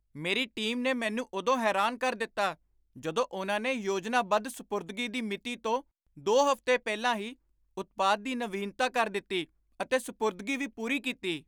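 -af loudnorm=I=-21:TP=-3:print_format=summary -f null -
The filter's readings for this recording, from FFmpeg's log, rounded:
Input Integrated:    -30.9 LUFS
Input True Peak:     -13.0 dBTP
Input LRA:             1.9 LU
Input Threshold:     -41.2 LUFS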